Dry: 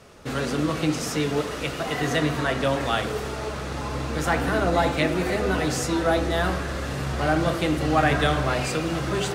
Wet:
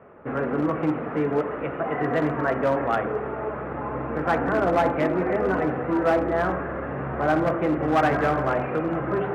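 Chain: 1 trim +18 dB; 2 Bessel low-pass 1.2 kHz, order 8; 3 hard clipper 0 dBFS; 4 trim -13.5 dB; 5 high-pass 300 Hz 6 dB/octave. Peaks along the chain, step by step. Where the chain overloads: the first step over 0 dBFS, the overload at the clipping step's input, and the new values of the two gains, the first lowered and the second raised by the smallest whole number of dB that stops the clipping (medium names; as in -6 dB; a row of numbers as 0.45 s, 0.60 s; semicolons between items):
+9.5 dBFS, +8.0 dBFS, 0.0 dBFS, -13.5 dBFS, -10.0 dBFS; step 1, 8.0 dB; step 1 +10 dB, step 4 -5.5 dB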